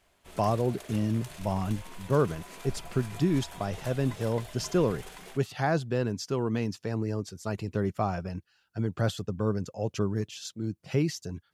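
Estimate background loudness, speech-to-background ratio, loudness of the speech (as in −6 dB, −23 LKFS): −45.5 LKFS, 14.5 dB, −31.0 LKFS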